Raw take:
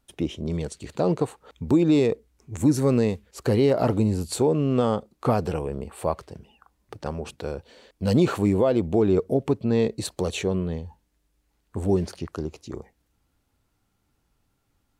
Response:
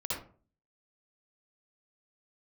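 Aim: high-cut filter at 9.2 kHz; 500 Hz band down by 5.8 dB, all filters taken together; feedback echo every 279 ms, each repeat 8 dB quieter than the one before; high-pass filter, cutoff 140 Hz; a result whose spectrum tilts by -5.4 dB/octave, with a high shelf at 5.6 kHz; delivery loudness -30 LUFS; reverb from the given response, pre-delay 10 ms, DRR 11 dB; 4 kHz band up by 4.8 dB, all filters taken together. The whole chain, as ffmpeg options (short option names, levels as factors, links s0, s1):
-filter_complex "[0:a]highpass=140,lowpass=9200,equalizer=f=500:t=o:g=-7.5,equalizer=f=4000:t=o:g=3,highshelf=f=5600:g=8,aecho=1:1:279|558|837|1116|1395:0.398|0.159|0.0637|0.0255|0.0102,asplit=2[s0][s1];[1:a]atrim=start_sample=2205,adelay=10[s2];[s1][s2]afir=irnorm=-1:irlink=0,volume=0.178[s3];[s0][s3]amix=inputs=2:normalize=0,volume=0.668"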